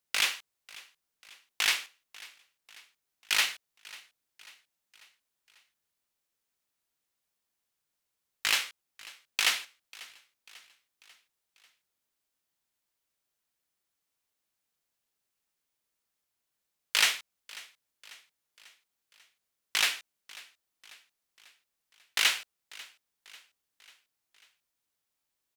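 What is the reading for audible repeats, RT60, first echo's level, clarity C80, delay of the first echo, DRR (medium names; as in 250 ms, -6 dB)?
3, no reverb, -21.0 dB, no reverb, 543 ms, no reverb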